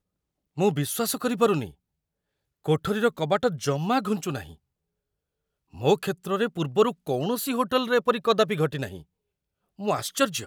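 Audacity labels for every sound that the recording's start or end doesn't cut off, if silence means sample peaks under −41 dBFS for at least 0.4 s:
0.570000	1.700000	sound
2.650000	4.540000	sound
5.740000	9.010000	sound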